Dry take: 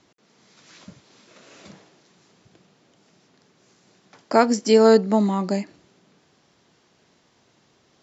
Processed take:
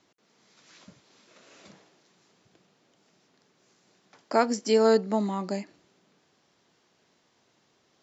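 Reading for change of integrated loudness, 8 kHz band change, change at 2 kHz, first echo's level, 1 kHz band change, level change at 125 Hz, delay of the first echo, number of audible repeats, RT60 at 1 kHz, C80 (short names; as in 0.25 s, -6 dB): -6.5 dB, n/a, -5.5 dB, none, -6.0 dB, n/a, none, none, none, none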